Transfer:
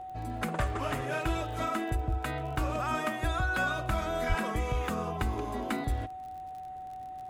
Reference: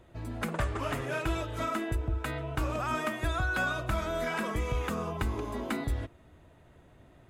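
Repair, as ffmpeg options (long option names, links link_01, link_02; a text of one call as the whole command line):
ffmpeg -i in.wav -filter_complex "[0:a]adeclick=threshold=4,bandreject=frequency=750:width=30,asplit=3[link_01][link_02][link_03];[link_01]afade=type=out:start_time=4.28:duration=0.02[link_04];[link_02]highpass=frequency=140:width=0.5412,highpass=frequency=140:width=1.3066,afade=type=in:start_time=4.28:duration=0.02,afade=type=out:start_time=4.4:duration=0.02[link_05];[link_03]afade=type=in:start_time=4.4:duration=0.02[link_06];[link_04][link_05][link_06]amix=inputs=3:normalize=0" out.wav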